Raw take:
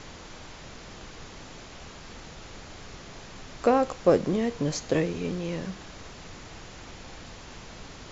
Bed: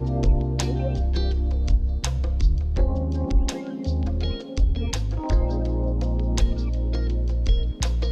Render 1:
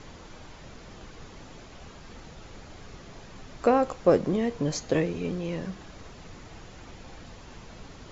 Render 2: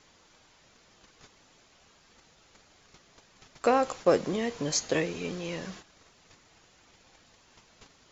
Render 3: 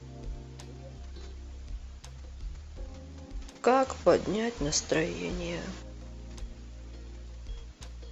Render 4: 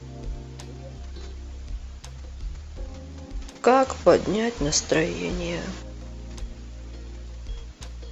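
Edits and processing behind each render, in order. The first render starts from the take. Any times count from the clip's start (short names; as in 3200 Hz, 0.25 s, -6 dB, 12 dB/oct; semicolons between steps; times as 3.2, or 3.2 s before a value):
denoiser 6 dB, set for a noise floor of -45 dBFS
gate -41 dBFS, range -13 dB; tilt +2.5 dB/oct
add bed -21 dB
gain +6 dB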